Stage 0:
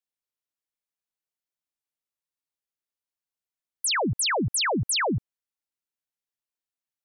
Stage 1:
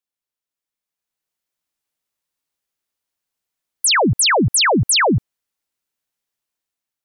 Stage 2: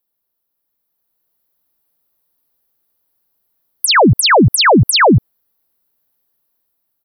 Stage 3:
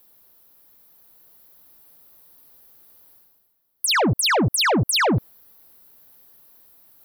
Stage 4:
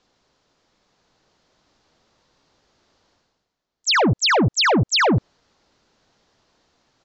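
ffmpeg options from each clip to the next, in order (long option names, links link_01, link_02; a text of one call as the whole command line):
ffmpeg -i in.wav -af "dynaudnorm=framelen=440:gausssize=5:maxgain=8dB,volume=2dB" out.wav
ffmpeg -i in.wav -af "firequalizer=gain_entry='entry(460,0);entry(2400,-12);entry(4400,-7);entry(7500,-18);entry(12000,6)':delay=0.05:min_phase=1,alimiter=level_in=16dB:limit=-1dB:release=50:level=0:latency=1,volume=-3.5dB" out.wav
ffmpeg -i in.wav -af "asoftclip=type=tanh:threshold=-13dB,areverse,acompressor=mode=upward:threshold=-32dB:ratio=2.5,areverse,volume=-3.5dB" out.wav
ffmpeg -i in.wav -af "aresample=16000,aresample=44100,volume=2dB" out.wav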